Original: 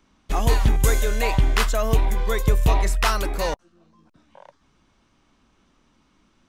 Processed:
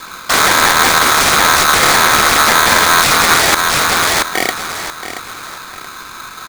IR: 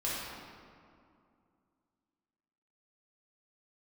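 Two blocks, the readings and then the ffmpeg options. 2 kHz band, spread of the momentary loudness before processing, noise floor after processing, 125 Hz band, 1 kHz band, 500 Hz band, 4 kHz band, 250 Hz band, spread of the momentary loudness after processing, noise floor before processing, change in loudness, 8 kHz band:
+20.0 dB, 6 LU, −32 dBFS, −4.0 dB, +17.5 dB, +8.0 dB, +20.5 dB, +8.0 dB, 20 LU, −64 dBFS, +12.5 dB, +20.0 dB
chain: -filter_complex "[0:a]asplit=2[link_01][link_02];[link_02]acrusher=bits=3:mode=log:mix=0:aa=0.000001,volume=-3.5dB[link_03];[link_01][link_03]amix=inputs=2:normalize=0,asoftclip=type=tanh:threshold=-15.5dB,acrossover=split=120|360|3100[link_04][link_05][link_06][link_07];[link_04]acompressor=threshold=-20dB:ratio=4[link_08];[link_05]acompressor=threshold=-41dB:ratio=4[link_09];[link_06]acompressor=threshold=-32dB:ratio=4[link_10];[link_07]acompressor=threshold=-47dB:ratio=4[link_11];[link_08][link_09][link_10][link_11]amix=inputs=4:normalize=0,aeval=exprs='(mod(15.8*val(0)+1,2)-1)/15.8':channel_layout=same,asuperstop=centerf=1600:order=8:qfactor=2.3,asplit=2[link_12][link_13];[link_13]aecho=0:1:678|1356|2034:0.282|0.0874|0.0271[link_14];[link_12][link_14]amix=inputs=2:normalize=0,aresample=22050,aresample=44100,alimiter=level_in=27.5dB:limit=-1dB:release=50:level=0:latency=1,aeval=exprs='val(0)*sgn(sin(2*PI*1300*n/s))':channel_layout=same,volume=-1dB"

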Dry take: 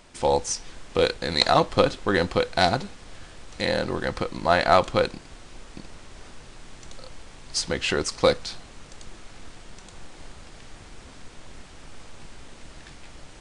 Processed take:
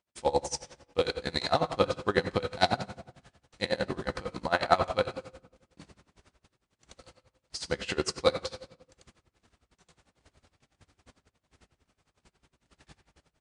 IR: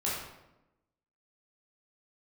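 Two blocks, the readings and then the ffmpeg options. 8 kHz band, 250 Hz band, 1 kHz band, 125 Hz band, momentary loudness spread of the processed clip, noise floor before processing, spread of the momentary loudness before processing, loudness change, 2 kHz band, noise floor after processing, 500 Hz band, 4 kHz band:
−8.5 dB, −7.0 dB, −6.5 dB, −7.0 dB, 13 LU, −46 dBFS, 10 LU, −7.0 dB, −7.0 dB, −84 dBFS, −6.5 dB, −7.5 dB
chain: -filter_complex "[0:a]highpass=frequency=43:width=0.5412,highpass=frequency=43:width=1.3066,agate=range=-27dB:threshold=-44dB:ratio=16:detection=peak,asplit=2[link_01][link_02];[1:a]atrim=start_sample=2205[link_03];[link_02][link_03]afir=irnorm=-1:irlink=0,volume=-10dB[link_04];[link_01][link_04]amix=inputs=2:normalize=0,aeval=exprs='val(0)*pow(10,-22*(0.5-0.5*cos(2*PI*11*n/s))/20)':channel_layout=same,volume=-4dB"

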